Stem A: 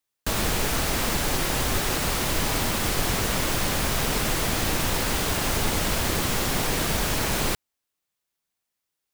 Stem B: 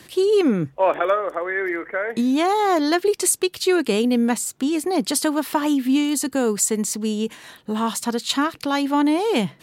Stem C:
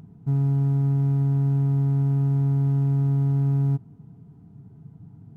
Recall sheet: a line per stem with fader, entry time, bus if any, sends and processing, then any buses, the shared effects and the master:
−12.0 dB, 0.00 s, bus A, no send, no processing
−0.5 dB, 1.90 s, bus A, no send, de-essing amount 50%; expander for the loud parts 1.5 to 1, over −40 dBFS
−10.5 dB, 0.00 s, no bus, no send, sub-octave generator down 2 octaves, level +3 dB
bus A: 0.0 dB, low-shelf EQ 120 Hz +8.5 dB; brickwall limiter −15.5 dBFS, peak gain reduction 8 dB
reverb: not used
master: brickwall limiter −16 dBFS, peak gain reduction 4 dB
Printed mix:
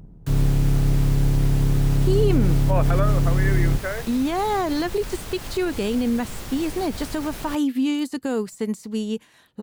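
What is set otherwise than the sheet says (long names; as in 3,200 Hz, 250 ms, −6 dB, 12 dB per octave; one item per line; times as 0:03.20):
stem C −10.5 dB → −1.5 dB
master: missing brickwall limiter −16 dBFS, peak gain reduction 4 dB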